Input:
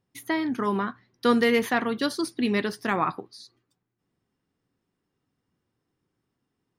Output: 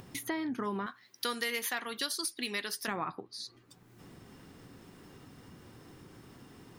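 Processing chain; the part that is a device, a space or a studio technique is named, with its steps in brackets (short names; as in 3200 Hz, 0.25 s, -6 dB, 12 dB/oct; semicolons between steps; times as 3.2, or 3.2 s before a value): 0.86–2.88 tilt +4.5 dB/oct; upward and downward compression (upward compressor, threshold -32 dBFS; compressor 3:1, threshold -35 dBFS, peak gain reduction 13.5 dB)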